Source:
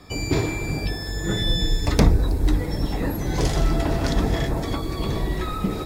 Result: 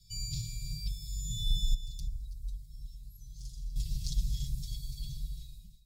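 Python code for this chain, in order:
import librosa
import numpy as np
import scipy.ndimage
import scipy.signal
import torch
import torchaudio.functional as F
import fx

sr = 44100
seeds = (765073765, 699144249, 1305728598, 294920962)

y = fx.fade_out_tail(x, sr, length_s=1.03)
y = fx.tone_stack(y, sr, knobs='6-0-2', at=(1.74, 3.76))
y = scipy.signal.sosfilt(scipy.signal.cheby2(4, 70, [380.0, 1300.0], 'bandstop', fs=sr, output='sos'), y)
y = y + 0.84 * np.pad(y, (int(6.0 * sr / 1000.0), 0))[:len(y)]
y = y + 10.0 ** (-16.5 / 20.0) * np.pad(y, (int(332 * sr / 1000.0), 0))[:len(y)]
y = y * 10.0 ** (-8.5 / 20.0)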